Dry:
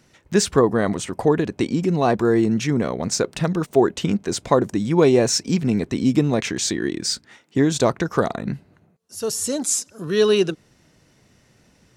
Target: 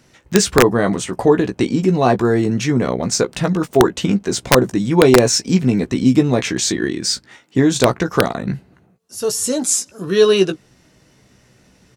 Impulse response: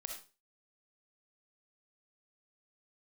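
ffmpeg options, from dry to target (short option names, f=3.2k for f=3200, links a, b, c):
-filter_complex "[0:a]asplit=2[a][b];[b]adelay=16,volume=-7dB[c];[a][c]amix=inputs=2:normalize=0,aeval=exprs='(mod(1.68*val(0)+1,2)-1)/1.68':c=same,volume=3.5dB"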